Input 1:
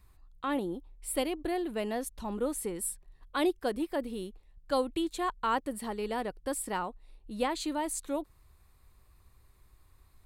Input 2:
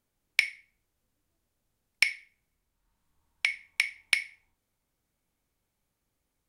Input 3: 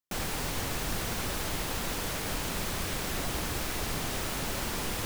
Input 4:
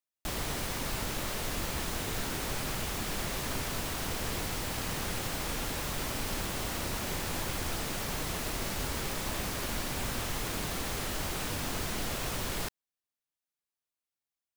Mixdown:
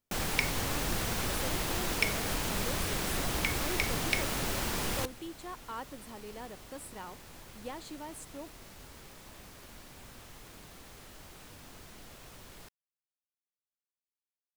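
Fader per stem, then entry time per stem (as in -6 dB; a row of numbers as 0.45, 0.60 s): -11.5, -6.5, 0.0, -16.5 dB; 0.25, 0.00, 0.00, 0.00 s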